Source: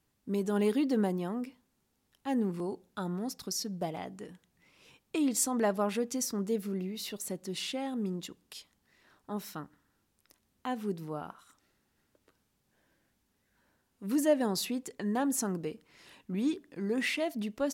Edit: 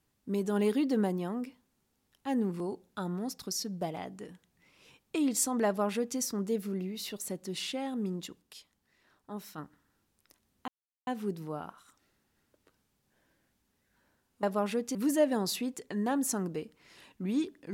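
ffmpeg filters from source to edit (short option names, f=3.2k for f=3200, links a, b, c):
-filter_complex "[0:a]asplit=6[a][b][c][d][e][f];[a]atrim=end=8.422[g];[b]atrim=start=8.418:end=9.582,asetpts=PTS-STARTPTS,volume=-4dB[h];[c]atrim=start=9.578:end=10.68,asetpts=PTS-STARTPTS,afade=t=out:st=1.098:d=0.004:c=hsin,apad=pad_dur=0.39[i];[d]atrim=start=10.68:end=14.042,asetpts=PTS-STARTPTS,afade=t=in:d=0.004:c=hsin[j];[e]atrim=start=5.658:end=6.182[k];[f]atrim=start=14.038[l];[g][h]acrossfade=d=0.004:c1=hsin:c2=hsin[m];[i][j]concat=n=2:v=0:a=1[n];[m][n]acrossfade=d=0.004:c1=hsin:c2=hsin[o];[o][k]acrossfade=d=0.004:c1=hsin:c2=hsin[p];[p][l]acrossfade=d=0.004:c1=hsin:c2=hsin"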